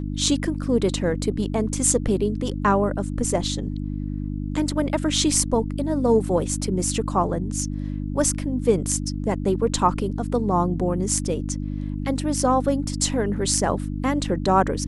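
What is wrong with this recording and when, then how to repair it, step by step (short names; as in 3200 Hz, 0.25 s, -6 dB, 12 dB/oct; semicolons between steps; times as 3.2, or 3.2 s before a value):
hum 50 Hz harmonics 6 -28 dBFS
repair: de-hum 50 Hz, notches 6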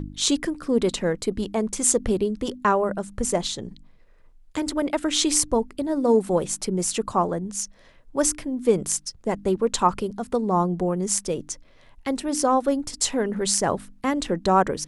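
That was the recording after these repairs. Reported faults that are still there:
none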